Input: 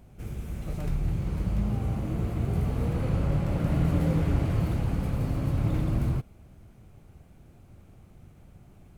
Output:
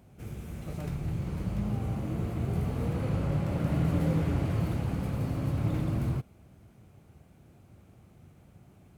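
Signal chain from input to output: HPF 77 Hz; gain -1.5 dB

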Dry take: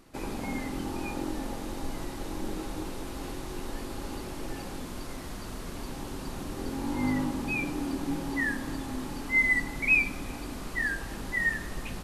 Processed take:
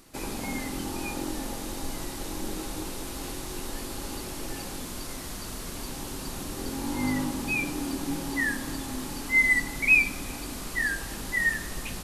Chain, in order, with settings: high shelf 3500 Hz +10.5 dB

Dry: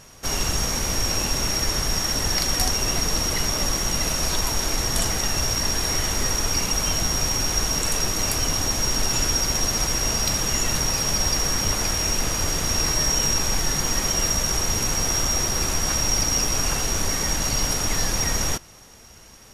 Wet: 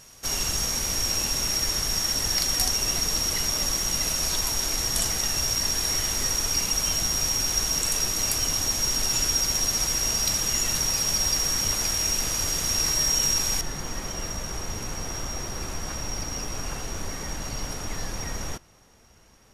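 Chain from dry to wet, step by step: high shelf 2800 Hz +8 dB, from 13.61 s -6 dB; gain -7 dB

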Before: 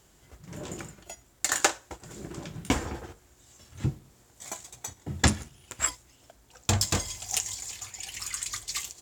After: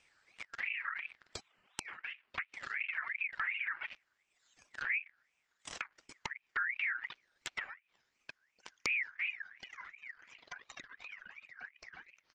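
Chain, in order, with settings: speed glide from 82% -> 64%; high shelf 2400 Hz -9 dB; speakerphone echo 0.3 s, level -24 dB; sample leveller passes 3; downsampling 16000 Hz; soft clip -25 dBFS, distortion -5 dB; spectral repair 1.32–1.85, 220–1600 Hz before; reverb removal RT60 1.6 s; compressor 6:1, threshold -30 dBFS, peak gain reduction 4 dB; bell 3300 Hz +10 dB 0.78 oct; treble ducked by the level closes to 310 Hz, closed at -31 dBFS; ring modulator with a swept carrier 2000 Hz, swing 25%, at 2.8 Hz; gain +1 dB

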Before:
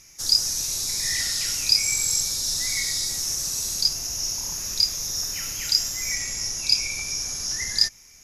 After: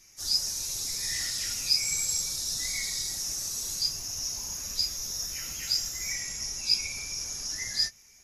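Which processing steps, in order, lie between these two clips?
phase scrambler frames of 50 ms; gain -6 dB

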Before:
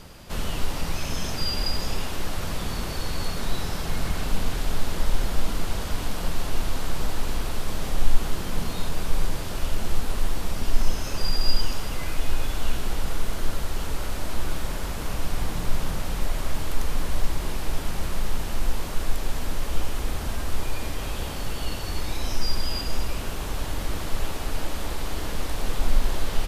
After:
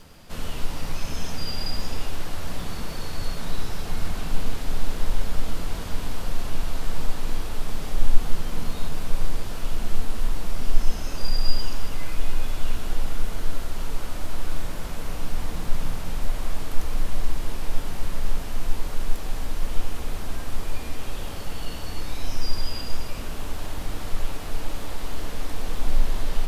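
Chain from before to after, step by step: crackle 20/s -33 dBFS; on a send: reverb RT60 2.0 s, pre-delay 4 ms, DRR 5 dB; on the sum: gain -4.5 dB

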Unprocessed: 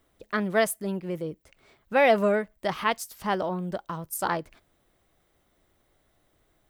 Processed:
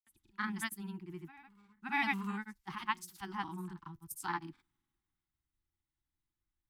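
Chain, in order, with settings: elliptic band-stop 350–830 Hz, stop band 40 dB; on a send: reverse echo 0.594 s -19.5 dB; on the sum: grains 0.1 s, pitch spread up and down by 0 st; three-band expander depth 40%; gain -8.5 dB

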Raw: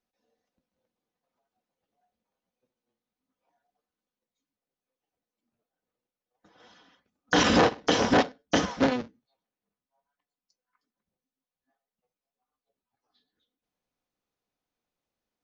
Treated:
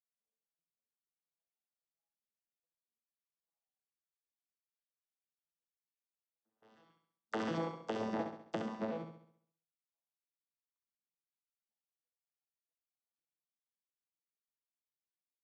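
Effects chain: arpeggiated vocoder bare fifth, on A2, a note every 0.356 s; HPF 620 Hz 6 dB/oct; gate with hold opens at -56 dBFS; tilt shelf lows +4.5 dB, about 940 Hz; compressor 5:1, threshold -31 dBFS, peak gain reduction 11.5 dB; flutter echo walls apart 11.6 m, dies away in 0.62 s; gain -4 dB

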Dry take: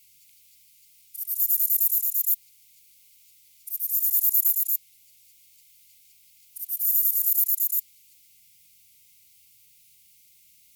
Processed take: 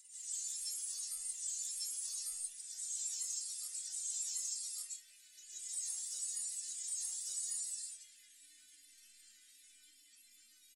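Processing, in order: inharmonic rescaling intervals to 85%; metallic resonator 260 Hz, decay 0.33 s, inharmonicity 0.008; grains, pitch spread up and down by 3 st; reverse echo 1.148 s -3 dB; limiter -42.5 dBFS, peak gain reduction 13 dB; notch 6100 Hz, Q 12; comb 3.4 ms, depth 69%; reverb RT60 0.50 s, pre-delay 0.1 s, DRR -9 dB; gain +1 dB

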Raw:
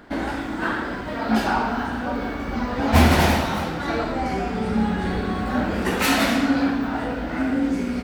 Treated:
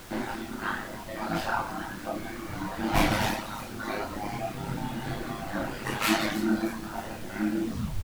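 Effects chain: tape stop at the end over 0.36 s; bell 420 Hz -10.5 dB 0.32 oct; comb 6.9 ms, depth 61%; thin delay 0.309 s, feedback 59%, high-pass 5000 Hz, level -8 dB; reverb removal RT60 1.9 s; ring modulator 52 Hz; chorus voices 6, 0.82 Hz, delay 28 ms, depth 4.8 ms; added noise pink -46 dBFS

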